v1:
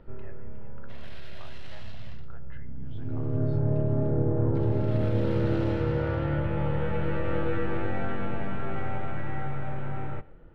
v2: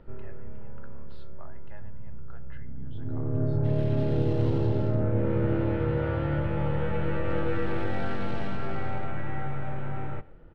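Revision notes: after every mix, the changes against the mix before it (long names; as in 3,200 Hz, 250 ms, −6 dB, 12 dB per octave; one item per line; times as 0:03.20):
second sound: entry +2.75 s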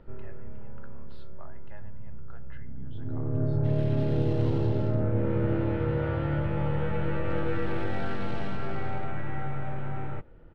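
first sound: send off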